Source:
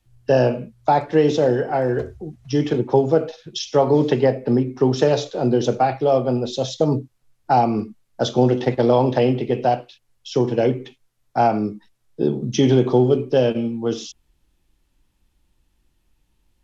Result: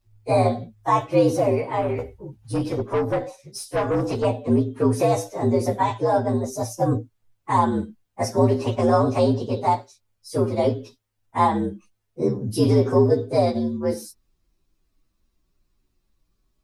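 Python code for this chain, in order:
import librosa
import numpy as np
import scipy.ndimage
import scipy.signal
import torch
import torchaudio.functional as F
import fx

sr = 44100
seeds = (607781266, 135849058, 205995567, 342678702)

y = fx.partial_stretch(x, sr, pct=118)
y = fx.tube_stage(y, sr, drive_db=17.0, bias=0.35, at=(1.81, 4.25))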